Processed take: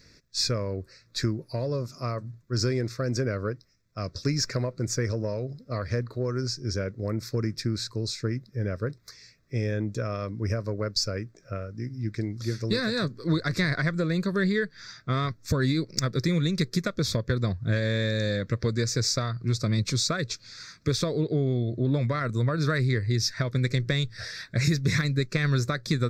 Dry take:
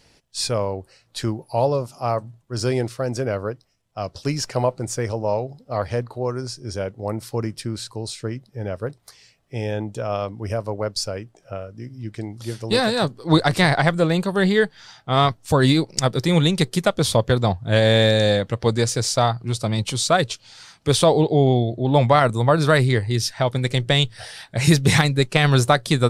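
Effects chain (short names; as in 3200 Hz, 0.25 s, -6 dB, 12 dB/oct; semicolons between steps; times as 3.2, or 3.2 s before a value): compressor, threshold -22 dBFS, peak gain reduction 11.5 dB; soft clip -9 dBFS, distortion -33 dB; fixed phaser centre 3000 Hz, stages 6; gain +2 dB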